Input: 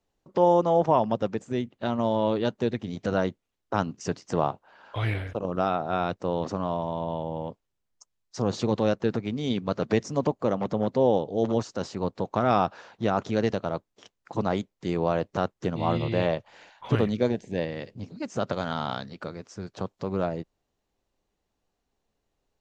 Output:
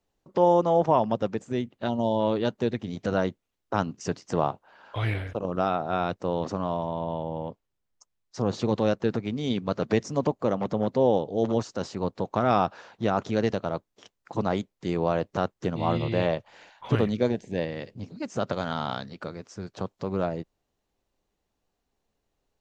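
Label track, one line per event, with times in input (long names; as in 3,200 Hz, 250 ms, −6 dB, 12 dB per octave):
1.890000	2.200000	gain on a spectral selection 1,000–2,800 Hz −16 dB
6.860000	8.650000	high-shelf EQ 4,800 Hz −5.5 dB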